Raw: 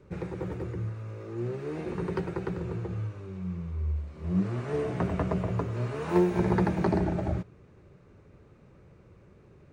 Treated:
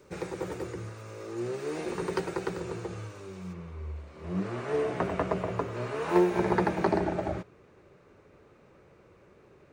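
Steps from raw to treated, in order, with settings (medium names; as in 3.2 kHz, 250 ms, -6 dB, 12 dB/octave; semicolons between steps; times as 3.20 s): tone controls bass -12 dB, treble +11 dB, from 3.52 s treble -1 dB; trim +3.5 dB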